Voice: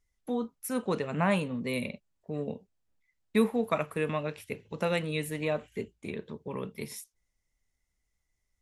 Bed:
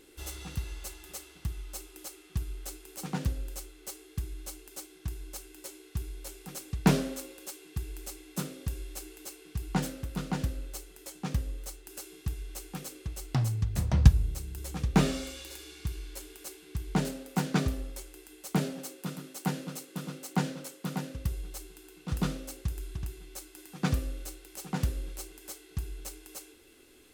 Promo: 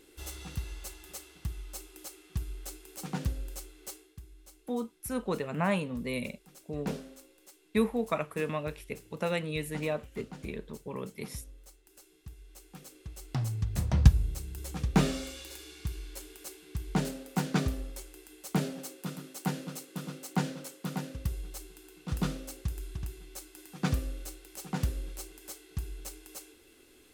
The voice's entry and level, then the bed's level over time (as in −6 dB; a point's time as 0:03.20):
4.40 s, −2.0 dB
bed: 0:03.93 −1.5 dB
0:04.19 −13.5 dB
0:12.29 −13.5 dB
0:13.74 −1 dB